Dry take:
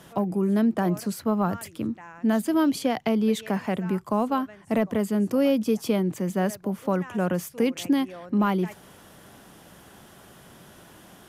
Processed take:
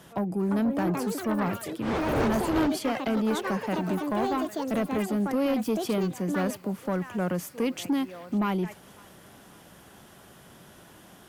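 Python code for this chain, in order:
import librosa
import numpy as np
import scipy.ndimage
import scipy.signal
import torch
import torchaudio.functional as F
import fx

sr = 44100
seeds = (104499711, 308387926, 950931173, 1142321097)

p1 = fx.dmg_wind(x, sr, seeds[0], corner_hz=630.0, level_db=-22.0, at=(2.05, 2.66), fade=0.02)
p2 = fx.echo_pitch(p1, sr, ms=395, semitones=6, count=3, db_per_echo=-6.0)
p3 = fx.cheby_harmonics(p2, sr, harmonics=(5,), levels_db=(-17,), full_scale_db=-9.5)
p4 = p3 + fx.echo_thinned(p3, sr, ms=546, feedback_pct=69, hz=1100.0, wet_db=-23, dry=0)
y = p4 * 10.0 ** (-6.5 / 20.0)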